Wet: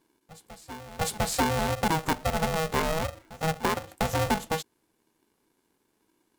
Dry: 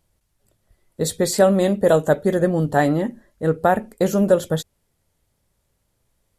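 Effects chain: on a send: reverse echo 0.702 s -23.5 dB; on the sum: compressor 2.5:1, threshold -22 dBFS, peak gain reduction 8.5 dB; polarity switched at an audio rate 320 Hz; gain -3.5 dB

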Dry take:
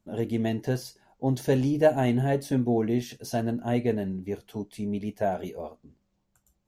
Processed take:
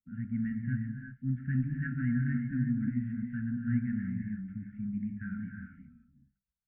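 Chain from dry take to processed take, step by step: steep low-pass 1900 Hz 48 dB/oct; gate with hold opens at -52 dBFS; brick-wall FIR band-stop 270–1300 Hz; non-linear reverb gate 0.39 s rising, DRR 3.5 dB; gain -4 dB

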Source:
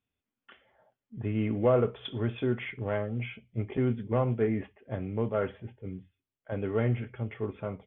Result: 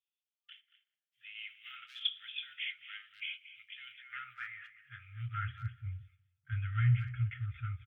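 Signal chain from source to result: gate -59 dBFS, range -10 dB; speakerphone echo 0.23 s, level -13 dB; high-pass sweep 3100 Hz -> 63 Hz, 3.86–5.76; tape echo 0.19 s, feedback 37%, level -18.5 dB, low-pass 1200 Hz; FFT band-reject 130–1200 Hz

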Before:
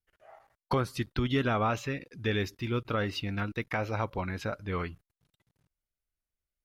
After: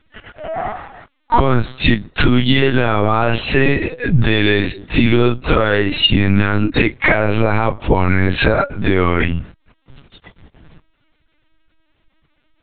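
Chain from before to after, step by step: dynamic EQ 1100 Hz, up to -3 dB, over -48 dBFS, Q 3.5; compressor 10:1, threshold -39 dBFS, peak gain reduction 16 dB; plain phase-vocoder stretch 1.9×; LPC vocoder at 8 kHz pitch kept; maximiser +35.5 dB; gain -1 dB

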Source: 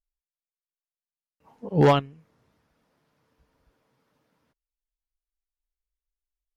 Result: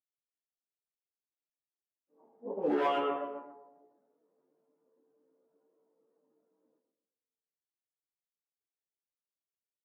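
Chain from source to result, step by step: doubler 27 ms -10 dB; darkening echo 85 ms, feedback 39%, low-pass 1300 Hz, level -8 dB; on a send at -14.5 dB: reverb RT60 0.90 s, pre-delay 15 ms; on the sum: low-pass opened by the level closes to 430 Hz, open at -19.5 dBFS; LPF 2800 Hz 24 dB/oct; in parallel at -7.5 dB: hard clip -18.5 dBFS, distortion -8 dB; on the sum: plain phase-vocoder stretch 1.5×; compressor 12:1, threshold -24 dBFS, peak gain reduction 11 dB; HPF 290 Hz 24 dB/oct

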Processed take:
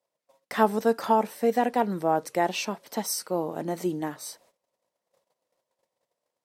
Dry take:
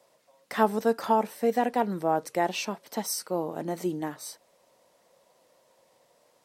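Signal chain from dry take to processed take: gate -60 dBFS, range -22 dB; gain +1.5 dB

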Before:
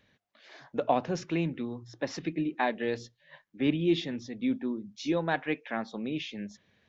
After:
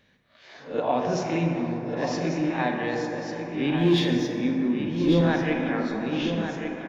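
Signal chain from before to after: spectral swells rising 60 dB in 0.33 s; 4.8–5.21 tilt -4 dB/oct; in parallel at -1 dB: limiter -22 dBFS, peak gain reduction 10.5 dB; 1.43–1.97 on the sum: Gaussian blur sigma 2.5 samples; 3.77–4.28 sample leveller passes 1; echo 1.146 s -7.5 dB; plate-style reverb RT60 4.1 s, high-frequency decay 0.3×, DRR 1 dB; gain -3.5 dB

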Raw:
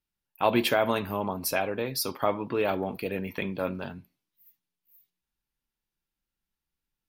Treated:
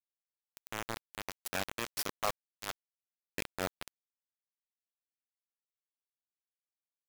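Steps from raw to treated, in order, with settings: opening faded in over 2.03 s; 2.22–3.29 HPF 570 Hz -> 1300 Hz 12 dB/oct; bit-crush 4-bit; gain -6 dB

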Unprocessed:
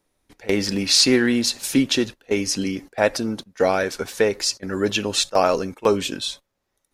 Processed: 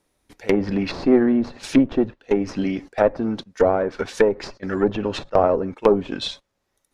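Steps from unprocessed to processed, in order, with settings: added harmonics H 6 -22 dB, 7 -38 dB, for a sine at -3 dBFS; treble ducked by the level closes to 830 Hz, closed at -17.5 dBFS; gain +3 dB

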